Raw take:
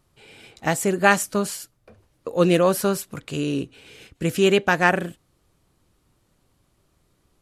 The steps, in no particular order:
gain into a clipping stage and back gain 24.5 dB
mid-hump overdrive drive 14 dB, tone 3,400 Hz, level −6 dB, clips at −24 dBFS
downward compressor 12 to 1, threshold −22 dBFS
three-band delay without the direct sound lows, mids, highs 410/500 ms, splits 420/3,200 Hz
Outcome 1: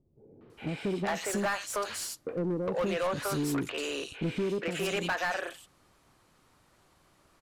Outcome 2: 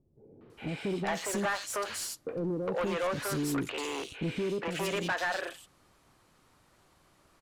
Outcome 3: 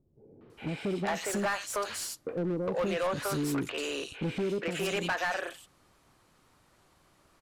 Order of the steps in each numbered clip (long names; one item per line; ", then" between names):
downward compressor, then three-band delay without the direct sound, then mid-hump overdrive, then gain into a clipping stage and back
downward compressor, then gain into a clipping stage and back, then three-band delay without the direct sound, then mid-hump overdrive
downward compressor, then three-band delay without the direct sound, then gain into a clipping stage and back, then mid-hump overdrive